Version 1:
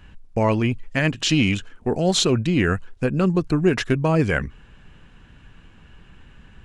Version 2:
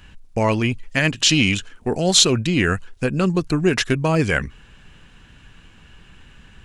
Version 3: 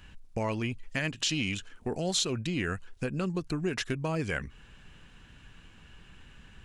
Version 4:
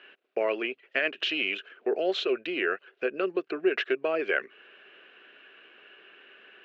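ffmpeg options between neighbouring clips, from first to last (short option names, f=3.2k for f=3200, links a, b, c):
-af "highshelf=f=2.4k:g=9.5"
-af "acompressor=threshold=-27dB:ratio=2,volume=-6dB"
-af "highpass=f=380:w=0.5412,highpass=f=380:w=1.3066,equalizer=f=390:t=q:w=4:g=9,equalizer=f=630:t=q:w=4:g=5,equalizer=f=910:t=q:w=4:g=-10,equalizer=f=1.5k:t=q:w=4:g=4,equalizer=f=2.7k:t=q:w=4:g=4,lowpass=f=3.1k:w=0.5412,lowpass=f=3.1k:w=1.3066,volume=4dB"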